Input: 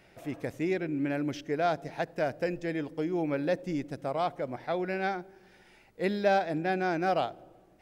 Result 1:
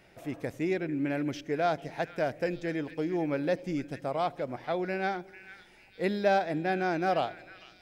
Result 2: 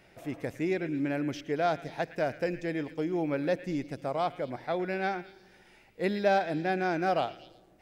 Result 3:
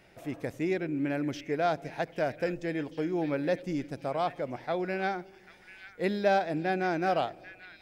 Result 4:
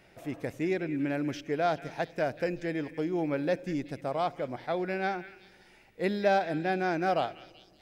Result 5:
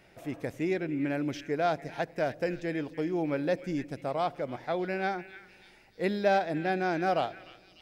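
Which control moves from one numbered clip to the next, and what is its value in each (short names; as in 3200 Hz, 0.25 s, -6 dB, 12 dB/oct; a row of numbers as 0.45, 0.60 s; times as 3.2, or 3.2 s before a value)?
delay with a stepping band-pass, time: 0.45, 0.113, 0.792, 0.19, 0.298 s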